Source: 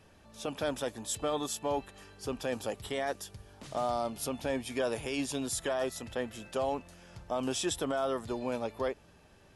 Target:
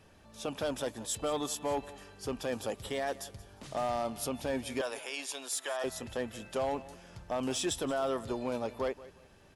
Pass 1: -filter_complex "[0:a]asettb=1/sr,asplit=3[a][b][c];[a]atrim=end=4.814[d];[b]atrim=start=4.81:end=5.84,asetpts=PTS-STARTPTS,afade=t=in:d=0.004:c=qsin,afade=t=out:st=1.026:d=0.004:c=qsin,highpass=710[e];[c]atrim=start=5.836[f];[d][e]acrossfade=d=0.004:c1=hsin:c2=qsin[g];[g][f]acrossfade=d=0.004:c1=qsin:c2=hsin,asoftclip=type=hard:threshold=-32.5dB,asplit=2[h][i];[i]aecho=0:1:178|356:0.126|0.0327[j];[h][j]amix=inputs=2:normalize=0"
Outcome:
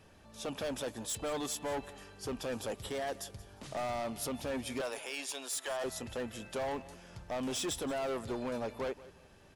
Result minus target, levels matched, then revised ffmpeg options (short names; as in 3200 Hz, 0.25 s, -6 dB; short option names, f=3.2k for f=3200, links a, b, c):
hard clip: distortion +10 dB
-filter_complex "[0:a]asettb=1/sr,asplit=3[a][b][c];[a]atrim=end=4.814[d];[b]atrim=start=4.81:end=5.84,asetpts=PTS-STARTPTS,afade=t=in:d=0.004:c=qsin,afade=t=out:st=1.026:d=0.004:c=qsin,highpass=710[e];[c]atrim=start=5.836[f];[d][e]acrossfade=d=0.004:c1=hsin:c2=qsin[g];[g][f]acrossfade=d=0.004:c1=qsin:c2=hsin,asoftclip=type=hard:threshold=-26dB,asplit=2[h][i];[i]aecho=0:1:178|356:0.126|0.0327[j];[h][j]amix=inputs=2:normalize=0"